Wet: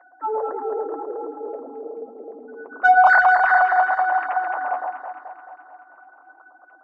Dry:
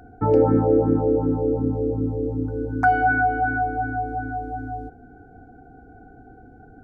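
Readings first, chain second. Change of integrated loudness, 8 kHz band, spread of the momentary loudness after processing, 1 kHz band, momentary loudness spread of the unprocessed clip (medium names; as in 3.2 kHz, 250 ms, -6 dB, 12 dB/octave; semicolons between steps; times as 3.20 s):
+3.5 dB, no reading, 21 LU, +6.0 dB, 13 LU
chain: formants replaced by sine waves; three-band isolator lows -23 dB, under 560 Hz, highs -13 dB, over 2 kHz; in parallel at -11 dB: saturation -18.5 dBFS, distortion -9 dB; on the sum: echo whose repeats swap between lows and highs 108 ms, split 1.2 kHz, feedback 77%, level -3 dB; flange 0.91 Hz, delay 5.4 ms, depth 2.6 ms, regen -49%; trim +5 dB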